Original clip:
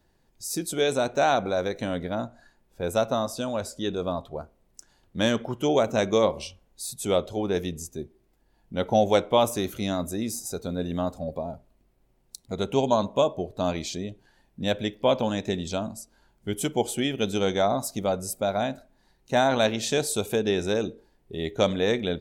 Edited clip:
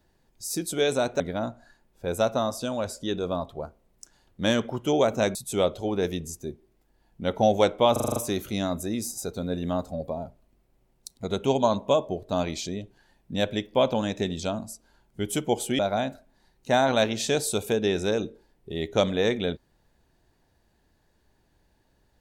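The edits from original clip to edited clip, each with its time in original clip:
0:01.20–0:01.96: remove
0:06.11–0:06.87: remove
0:09.44: stutter 0.04 s, 7 plays
0:17.07–0:18.42: remove

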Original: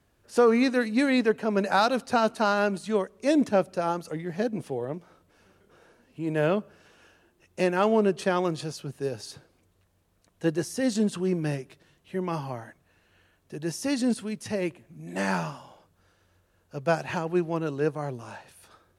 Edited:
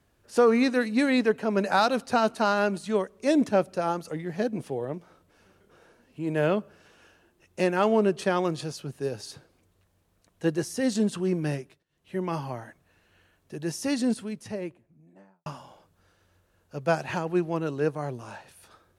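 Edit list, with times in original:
0:11.58–0:12.15: duck −23.5 dB, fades 0.26 s
0:13.89–0:15.46: fade out and dull

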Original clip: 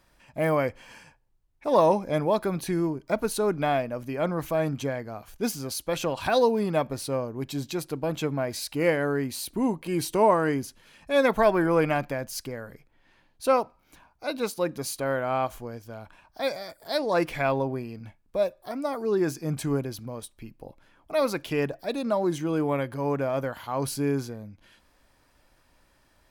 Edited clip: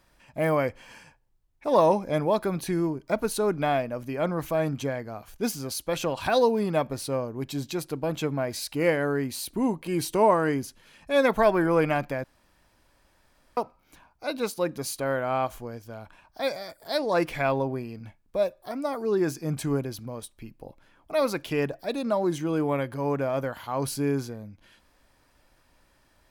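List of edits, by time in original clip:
0:12.24–0:13.57: fill with room tone

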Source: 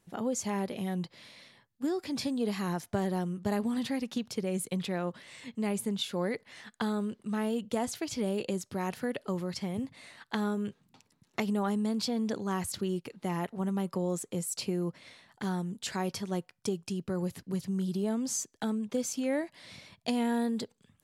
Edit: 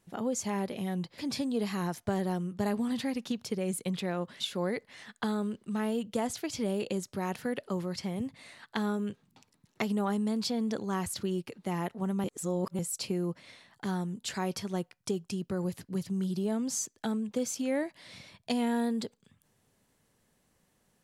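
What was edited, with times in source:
0:01.18–0:02.04: remove
0:05.26–0:05.98: remove
0:13.82–0:14.37: reverse

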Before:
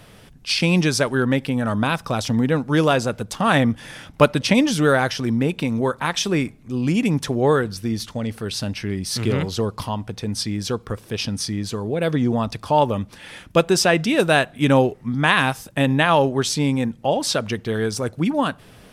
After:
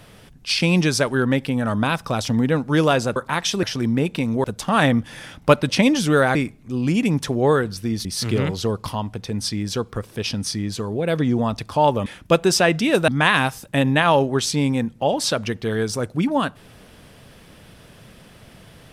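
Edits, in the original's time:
0:03.16–0:05.07: swap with 0:05.88–0:06.35
0:08.05–0:08.99: remove
0:13.00–0:13.31: remove
0:14.33–0:15.11: remove

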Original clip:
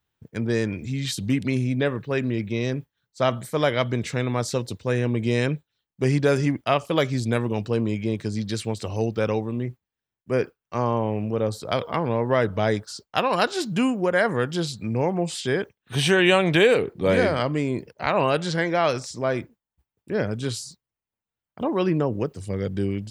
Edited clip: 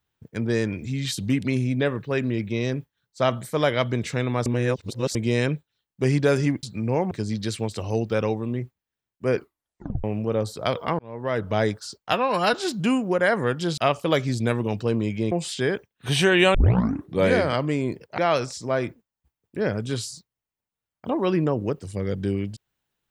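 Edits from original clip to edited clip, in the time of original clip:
0:04.46–0:05.15: reverse
0:06.63–0:08.17: swap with 0:14.70–0:15.18
0:10.42: tape stop 0.68 s
0:12.05–0:12.63: fade in
0:13.19–0:13.46: time-stretch 1.5×
0:16.41: tape start 0.61 s
0:18.05–0:18.72: remove

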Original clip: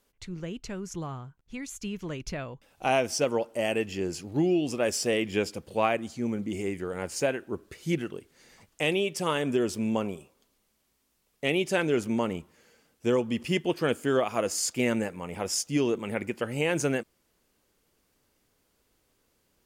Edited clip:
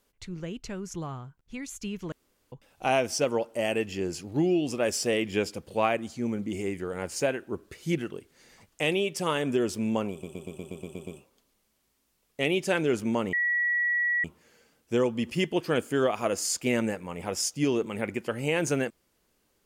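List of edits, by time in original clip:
0:02.12–0:02.52: fill with room tone
0:10.11: stutter 0.12 s, 9 plays
0:12.37: insert tone 1,930 Hz −23 dBFS 0.91 s

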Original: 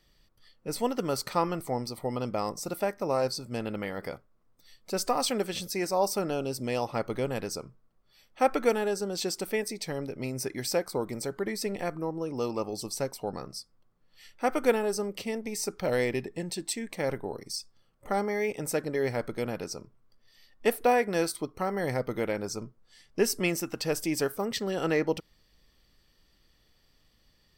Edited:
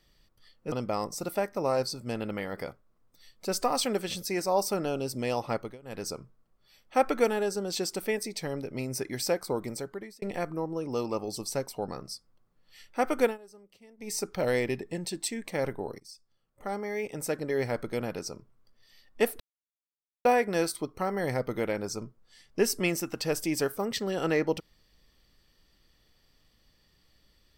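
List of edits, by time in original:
0:00.72–0:02.17: remove
0:06.99–0:07.51: duck −23 dB, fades 0.24 s
0:11.11–0:11.67: fade out
0:14.68–0:15.57: duck −22 dB, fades 0.15 s
0:17.45–0:19.11: fade in, from −15.5 dB
0:20.85: splice in silence 0.85 s

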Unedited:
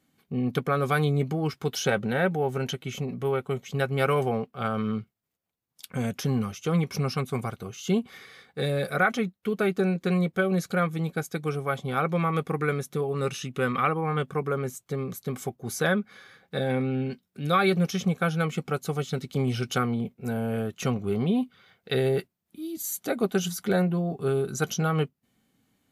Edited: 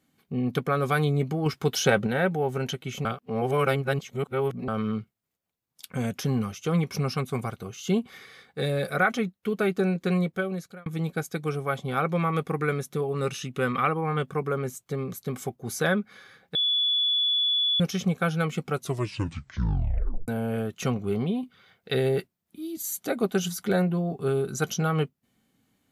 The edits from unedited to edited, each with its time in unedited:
0:01.46–0:02.07: clip gain +3.5 dB
0:03.05–0:04.68: reverse
0:10.17–0:10.86: fade out
0:16.55–0:17.80: beep over 3,430 Hz −21 dBFS
0:18.74: tape stop 1.54 s
0:21.16–0:21.43: fade out, to −6.5 dB

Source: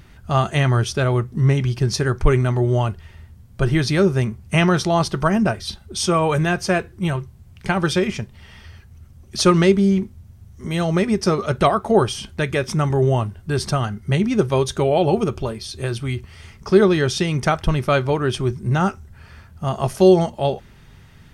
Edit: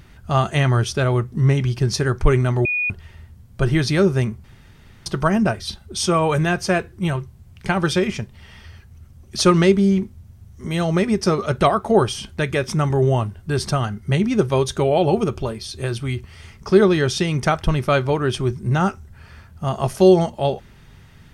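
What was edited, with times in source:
0:02.65–0:02.90: beep over 2,460 Hz −18.5 dBFS
0:04.44–0:05.06: fill with room tone

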